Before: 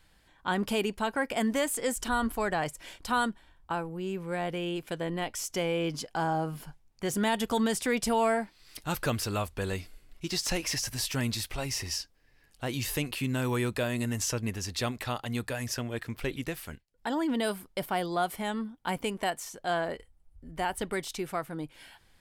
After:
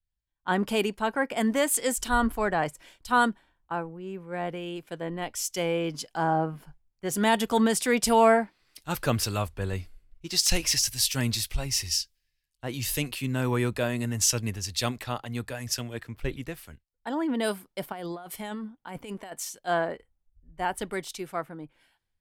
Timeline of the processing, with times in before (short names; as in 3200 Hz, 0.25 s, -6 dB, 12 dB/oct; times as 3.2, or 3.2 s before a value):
17.92–19.59 negative-ratio compressor -34 dBFS
whole clip: three-band expander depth 100%; gain +2 dB